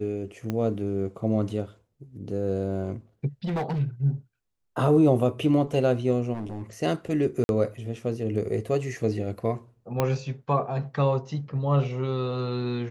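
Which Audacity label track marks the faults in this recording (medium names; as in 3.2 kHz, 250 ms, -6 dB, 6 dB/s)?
0.500000	0.500000	pop -16 dBFS
3.440000	3.810000	clipped -24.5 dBFS
6.330000	6.630000	clipped -29 dBFS
7.440000	7.490000	dropout 51 ms
10.000000	10.000000	pop -10 dBFS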